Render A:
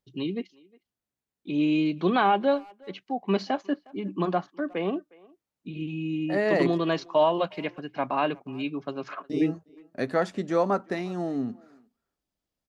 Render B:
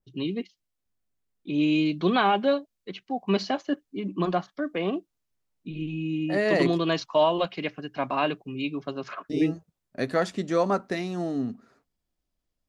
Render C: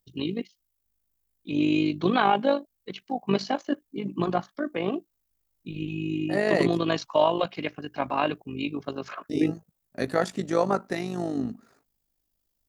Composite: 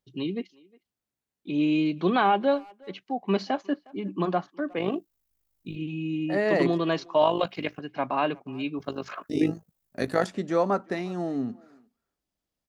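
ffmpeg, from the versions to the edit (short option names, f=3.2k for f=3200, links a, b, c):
-filter_complex "[2:a]asplit=3[a][b][c];[0:a]asplit=4[d][e][f][g];[d]atrim=end=4.782[h];[a]atrim=start=4.778:end=5.762[i];[e]atrim=start=5.758:end=7.222[j];[b]atrim=start=7.218:end=7.802[k];[f]atrim=start=7.798:end=8.792[l];[c]atrim=start=8.788:end=10.272[m];[g]atrim=start=10.268[n];[h][i]acrossfade=d=0.004:c1=hsin:c2=hsin[o];[o][j]acrossfade=d=0.004:c1=hsin:c2=hsin[p];[p][k]acrossfade=d=0.004:c1=hsin:c2=hsin[q];[q][l]acrossfade=d=0.004:c1=hsin:c2=hsin[r];[r][m]acrossfade=d=0.004:c1=hsin:c2=hsin[s];[s][n]acrossfade=d=0.004:c1=hsin:c2=hsin"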